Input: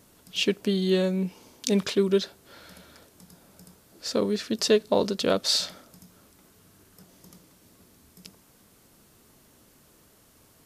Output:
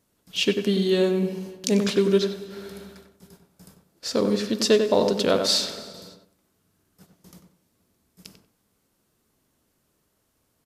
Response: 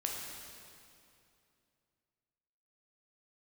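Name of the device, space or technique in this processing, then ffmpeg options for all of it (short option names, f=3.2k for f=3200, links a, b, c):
keyed gated reverb: -filter_complex "[0:a]agate=range=-13dB:threshold=-51dB:ratio=16:detection=peak,asplit=3[a][b][c];[1:a]atrim=start_sample=2205[d];[b][d]afir=irnorm=-1:irlink=0[e];[c]apad=whole_len=469995[f];[e][f]sidechaingate=range=-33dB:threshold=-58dB:ratio=16:detection=peak,volume=-11dB[g];[a][g]amix=inputs=2:normalize=0,asettb=1/sr,asplit=3[h][i][j];[h]atrim=end=1.164[k];[i]atrim=start=1.16:end=1.81,asetpts=PTS-STARTPTS,afade=t=in:d=0.004:c=qsin,afade=t=out:st=0.646:d=0.004:c=qsin,bandreject=f=3.6k:w=11[l];[j]atrim=start=1.806[m];[k][l]acrossfade=d=0.004:c1=hsin:c2=qsin[n];[n][m]acrossfade=d=0.004:c1=qsin:c2=hsin,asplit=2[o][p];[p]adelay=94,lowpass=f=1.8k:p=1,volume=-5dB,asplit=2[q][r];[r]adelay=94,lowpass=f=1.8k:p=1,volume=0.26,asplit=2[s][t];[t]adelay=94,lowpass=f=1.8k:p=1,volume=0.26[u];[o][q][s][u]amix=inputs=4:normalize=0"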